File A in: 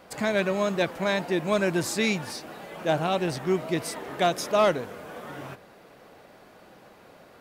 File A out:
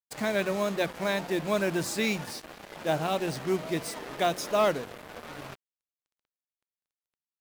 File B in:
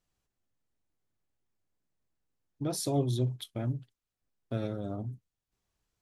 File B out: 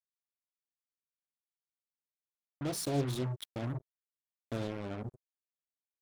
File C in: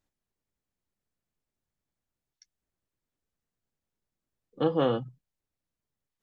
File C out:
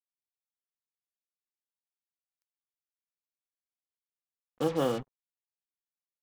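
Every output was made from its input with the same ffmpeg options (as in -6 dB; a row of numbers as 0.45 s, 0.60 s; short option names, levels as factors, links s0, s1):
-af "bandreject=f=60:t=h:w=6,bandreject=f=120:t=h:w=6,bandreject=f=180:t=h:w=6,acrusher=bits=5:mix=0:aa=0.5,volume=0.708"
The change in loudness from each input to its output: -3.0 LU, -3.5 LU, -3.0 LU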